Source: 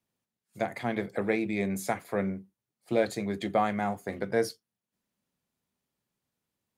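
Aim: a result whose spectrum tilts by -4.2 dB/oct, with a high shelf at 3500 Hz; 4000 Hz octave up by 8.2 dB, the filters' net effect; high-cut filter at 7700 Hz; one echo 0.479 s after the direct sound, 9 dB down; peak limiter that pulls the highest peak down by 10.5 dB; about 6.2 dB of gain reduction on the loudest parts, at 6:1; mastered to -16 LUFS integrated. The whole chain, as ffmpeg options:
-af "lowpass=7.7k,highshelf=f=3.5k:g=8.5,equalizer=f=4k:t=o:g=4.5,acompressor=threshold=-26dB:ratio=6,alimiter=level_in=1.5dB:limit=-24dB:level=0:latency=1,volume=-1.5dB,aecho=1:1:479:0.355,volume=21dB"

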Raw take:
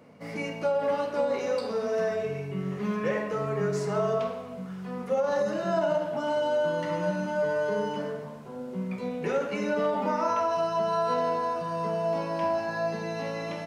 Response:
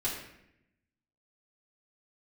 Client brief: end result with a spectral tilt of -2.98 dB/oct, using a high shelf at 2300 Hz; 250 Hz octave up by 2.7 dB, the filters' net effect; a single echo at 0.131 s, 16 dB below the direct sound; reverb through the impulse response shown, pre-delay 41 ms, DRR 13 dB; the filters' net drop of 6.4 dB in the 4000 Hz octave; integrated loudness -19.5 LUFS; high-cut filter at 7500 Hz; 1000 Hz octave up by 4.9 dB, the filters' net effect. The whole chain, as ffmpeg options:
-filter_complex "[0:a]lowpass=7.5k,equalizer=f=250:t=o:g=3.5,equalizer=f=1k:t=o:g=6.5,highshelf=f=2.3k:g=-4.5,equalizer=f=4k:t=o:g=-5,aecho=1:1:131:0.158,asplit=2[a][b];[1:a]atrim=start_sample=2205,adelay=41[c];[b][c]afir=irnorm=-1:irlink=0,volume=-18.5dB[d];[a][d]amix=inputs=2:normalize=0,volume=6.5dB"

